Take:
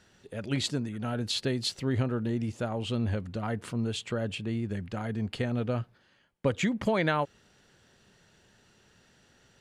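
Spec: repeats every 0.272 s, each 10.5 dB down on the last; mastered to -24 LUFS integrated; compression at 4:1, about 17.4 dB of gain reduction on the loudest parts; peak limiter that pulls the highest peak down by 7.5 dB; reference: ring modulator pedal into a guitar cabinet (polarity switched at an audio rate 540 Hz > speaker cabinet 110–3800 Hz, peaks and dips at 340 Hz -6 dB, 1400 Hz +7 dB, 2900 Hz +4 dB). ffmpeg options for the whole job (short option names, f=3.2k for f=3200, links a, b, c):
-af "acompressor=threshold=-44dB:ratio=4,alimiter=level_in=13dB:limit=-24dB:level=0:latency=1,volume=-13dB,aecho=1:1:272|544|816:0.299|0.0896|0.0269,aeval=exprs='val(0)*sgn(sin(2*PI*540*n/s))':c=same,highpass=110,equalizer=f=340:t=q:w=4:g=-6,equalizer=f=1.4k:t=q:w=4:g=7,equalizer=f=2.9k:t=q:w=4:g=4,lowpass=f=3.8k:w=0.5412,lowpass=f=3.8k:w=1.3066,volume=21.5dB"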